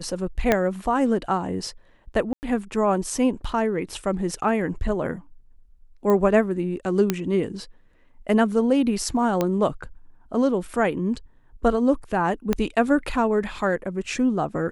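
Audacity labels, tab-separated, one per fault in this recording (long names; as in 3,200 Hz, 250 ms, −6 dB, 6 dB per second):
0.520000	0.520000	click −5 dBFS
2.330000	2.430000	drop-out 99 ms
6.100000	6.100000	click −12 dBFS
7.100000	7.100000	click −7 dBFS
9.410000	9.410000	click −9 dBFS
12.530000	12.530000	click −9 dBFS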